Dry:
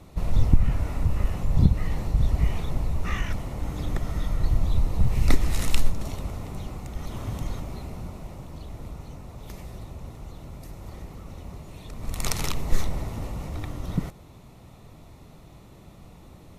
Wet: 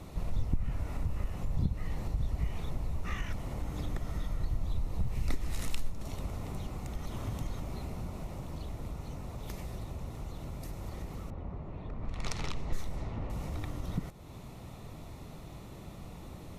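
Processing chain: 11.30–13.30 s: level-controlled noise filter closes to 1.2 kHz, open at -16 dBFS; compression 2:1, threshold -40 dBFS, peak gain reduction 16.5 dB; trim +2 dB

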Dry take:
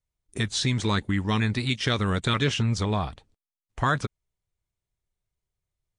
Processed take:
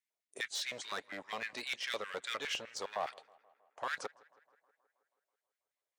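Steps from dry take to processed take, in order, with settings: spectral noise reduction 6 dB; reverse; compression 8:1, threshold -34 dBFS, peak gain reduction 15 dB; reverse; hard clipper -34.5 dBFS, distortion -12 dB; LFO high-pass square 4.9 Hz 550–1900 Hz; tape echo 161 ms, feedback 71%, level -23 dB, low-pass 3.1 kHz; trim +1.5 dB

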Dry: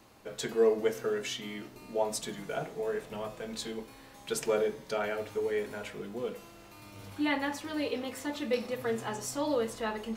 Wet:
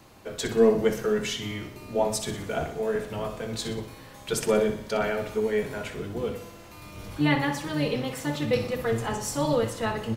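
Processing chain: octave divider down 1 oct, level -1 dB; feedback delay 61 ms, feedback 51%, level -10.5 dB; trim +5 dB

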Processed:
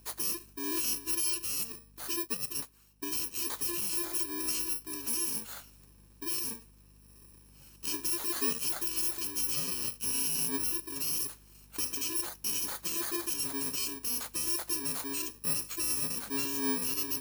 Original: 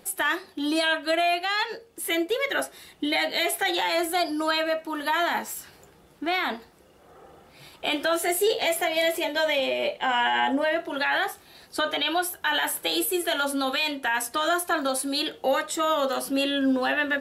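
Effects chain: bit-reversed sample order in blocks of 64 samples; hum 50 Hz, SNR 25 dB; 2.16–3.50 s: upward expansion 1.5:1, over -39 dBFS; trim -8 dB

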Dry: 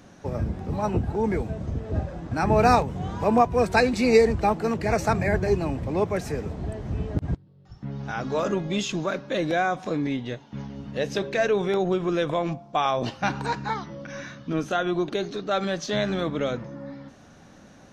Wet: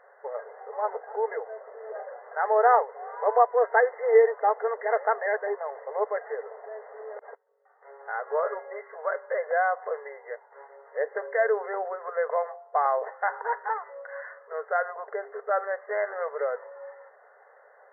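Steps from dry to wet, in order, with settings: brick-wall FIR band-pass 410–2100 Hz

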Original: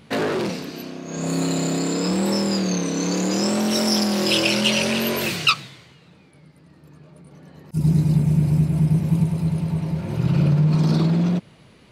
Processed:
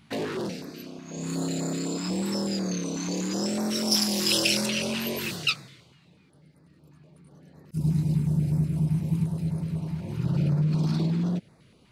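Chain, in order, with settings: 3.91–4.66 s: treble shelf 3.8 kHz +10.5 dB; step-sequenced notch 8.1 Hz 490–3000 Hz; trim -6.5 dB

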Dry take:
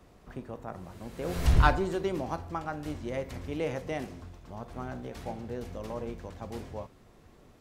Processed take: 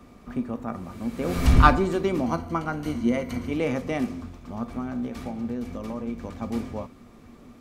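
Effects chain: 2.26–3.51 s: rippled EQ curve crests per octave 1.9, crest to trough 9 dB; 4.68–6.23 s: compression, threshold -37 dBFS, peak gain reduction 6.5 dB; small resonant body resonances 240/1200/2300 Hz, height 13 dB, ringing for 70 ms; trim +4.5 dB

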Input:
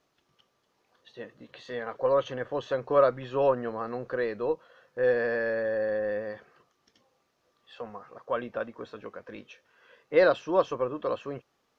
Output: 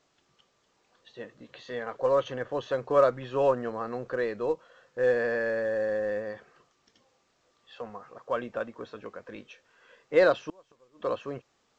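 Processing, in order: 10.33–11.04 s: inverted gate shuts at -24 dBFS, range -33 dB; A-law 128 kbps 16 kHz

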